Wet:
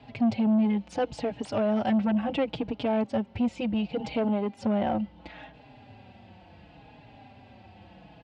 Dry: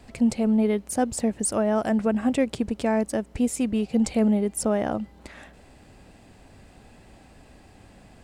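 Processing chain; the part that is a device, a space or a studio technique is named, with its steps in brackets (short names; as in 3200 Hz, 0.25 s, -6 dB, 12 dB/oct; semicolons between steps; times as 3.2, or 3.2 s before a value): 0.8–2.04 high shelf 4600 Hz +8.5 dB; barber-pole flanger into a guitar amplifier (endless flanger 4.4 ms -0.71 Hz; soft clip -22.5 dBFS, distortion -12 dB; speaker cabinet 87–4000 Hz, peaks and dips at 110 Hz +5 dB, 400 Hz -6 dB, 830 Hz +6 dB, 1200 Hz -5 dB, 1800 Hz -4 dB, 2900 Hz +4 dB); gain +3.5 dB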